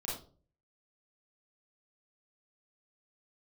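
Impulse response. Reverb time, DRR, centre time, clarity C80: 0.40 s, −6.0 dB, 46 ms, 8.5 dB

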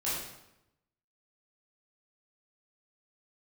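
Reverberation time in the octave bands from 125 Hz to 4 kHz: 1.1, 1.0, 0.90, 0.85, 0.80, 0.70 seconds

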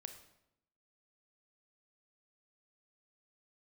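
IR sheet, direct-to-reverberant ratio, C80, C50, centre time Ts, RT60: 7.0 dB, 11.5 dB, 9.0 dB, 15 ms, 0.80 s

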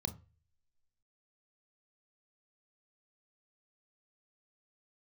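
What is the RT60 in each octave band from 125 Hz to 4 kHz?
0.55, 0.30, 0.35, 0.30, 0.50, 0.30 seconds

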